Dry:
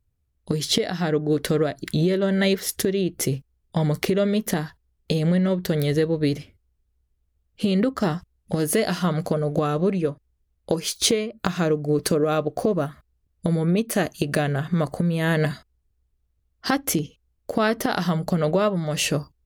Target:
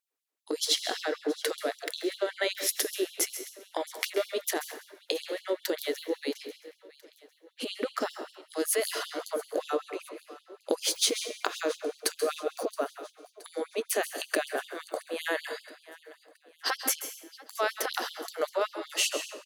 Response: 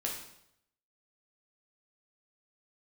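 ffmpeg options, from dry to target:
-filter_complex "[0:a]acompressor=threshold=-22dB:ratio=6,aecho=1:1:672|1344|2016|2688:0.106|0.0551|0.0286|0.0149,asplit=2[link_01][link_02];[1:a]atrim=start_sample=2205,adelay=133[link_03];[link_02][link_03]afir=irnorm=-1:irlink=0,volume=-12dB[link_04];[link_01][link_04]amix=inputs=2:normalize=0,afftfilt=real='re*gte(b*sr/1024,250*pow(3000/250,0.5+0.5*sin(2*PI*5.2*pts/sr)))':imag='im*gte(b*sr/1024,250*pow(3000/250,0.5+0.5*sin(2*PI*5.2*pts/sr)))':win_size=1024:overlap=0.75"

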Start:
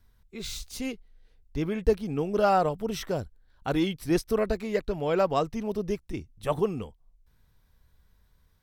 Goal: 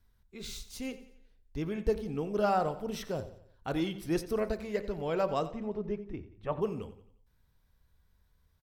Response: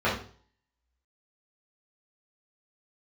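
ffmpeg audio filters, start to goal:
-filter_complex "[0:a]asettb=1/sr,asplit=3[link_01][link_02][link_03];[link_01]atrim=end=5.504[link_04];[link_02]atrim=start=5.5:end=6.62,asetpts=PTS-STARTPTS,afade=type=in:duration=0.004:curve=qsin,afade=type=out:start_time=1.116:duration=0.004:curve=qsin,lowpass=2200[link_05];[link_03]atrim=start=6.616[link_06];[link_04][link_05]acrossfade=duration=0.004:curve1=hsin:curve2=qsin[link_07];[link_07][link_06]acrossfade=duration=0.004:curve1=qsin:curve2=hsin,aecho=1:1:89|178|267|356:0.168|0.0772|0.0355|0.0163,asplit=2[link_08][link_09];[1:a]atrim=start_sample=2205,adelay=8[link_10];[link_09][link_10]afir=irnorm=-1:irlink=0,volume=-28dB[link_11];[link_08][link_11]amix=inputs=2:normalize=0,volume=-6dB"

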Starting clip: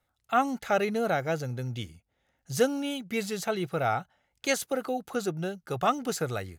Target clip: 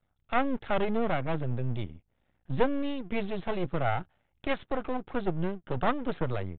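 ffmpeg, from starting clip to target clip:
ffmpeg -i in.wav -af "lowshelf=frequency=410:gain=11,aresample=11025,aeval=exprs='max(val(0),0)':channel_layout=same,aresample=44100,aresample=8000,aresample=44100,volume=-1.5dB" out.wav

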